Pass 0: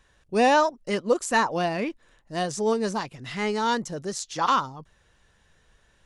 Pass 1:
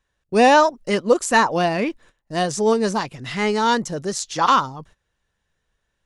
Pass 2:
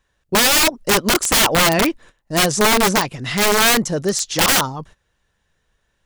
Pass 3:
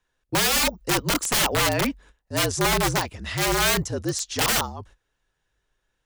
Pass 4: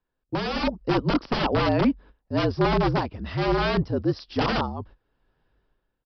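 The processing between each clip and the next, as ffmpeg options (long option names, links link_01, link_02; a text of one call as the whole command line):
ffmpeg -i in.wav -af "agate=range=-18dB:threshold=-52dB:ratio=16:detection=peak,volume=6dB" out.wav
ffmpeg -i in.wav -af "aeval=exprs='(mod(5.62*val(0)+1,2)-1)/5.62':channel_layout=same,volume=6dB" out.wav
ffmpeg -i in.wav -af "afreqshift=-54,volume=-7dB" out.wav
ffmpeg -i in.wav -af "dynaudnorm=framelen=120:gausssize=9:maxgain=14dB,aresample=11025,aresample=44100,equalizer=frequency=250:width_type=o:width=1:gain=5,equalizer=frequency=2000:width_type=o:width=1:gain=-7,equalizer=frequency=4000:width_type=o:width=1:gain=-9,volume=-5dB" out.wav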